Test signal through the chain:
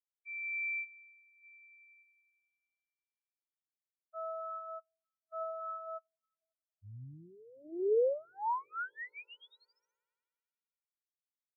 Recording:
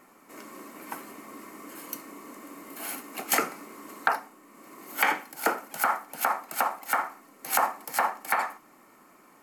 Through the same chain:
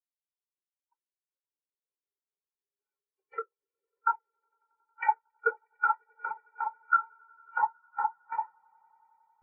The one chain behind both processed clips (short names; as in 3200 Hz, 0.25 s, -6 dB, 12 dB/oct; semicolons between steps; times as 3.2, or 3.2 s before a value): minimum comb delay 2.1 ms; BPF 110–4400 Hz; swelling echo 91 ms, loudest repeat 8, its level -14.5 dB; spectral expander 4:1; gain -2 dB